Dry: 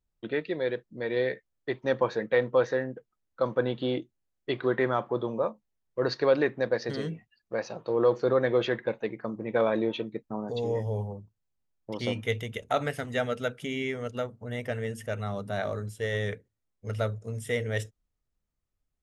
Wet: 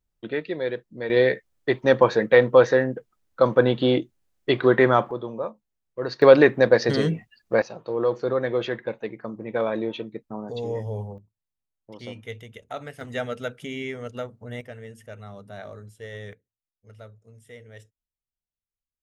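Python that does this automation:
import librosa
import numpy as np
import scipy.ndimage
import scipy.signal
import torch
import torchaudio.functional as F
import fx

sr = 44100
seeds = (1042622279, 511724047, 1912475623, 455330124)

y = fx.gain(x, sr, db=fx.steps((0.0, 2.0), (1.1, 9.0), (5.11, -1.5), (6.22, 10.5), (7.62, 0.0), (11.18, -7.5), (13.01, -0.5), (14.61, -8.0), (16.33, -15.5)))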